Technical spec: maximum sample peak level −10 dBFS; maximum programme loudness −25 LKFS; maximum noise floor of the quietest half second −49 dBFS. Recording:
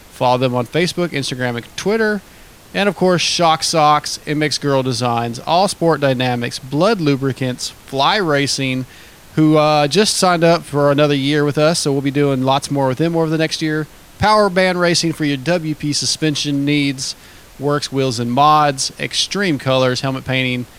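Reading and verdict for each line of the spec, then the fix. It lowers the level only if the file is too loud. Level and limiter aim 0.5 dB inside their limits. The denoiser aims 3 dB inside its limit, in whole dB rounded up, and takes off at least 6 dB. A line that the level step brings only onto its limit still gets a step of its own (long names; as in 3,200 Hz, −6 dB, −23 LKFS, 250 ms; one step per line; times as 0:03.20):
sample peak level −1.5 dBFS: out of spec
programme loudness −16.0 LKFS: out of spec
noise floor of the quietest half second −42 dBFS: out of spec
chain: level −9.5 dB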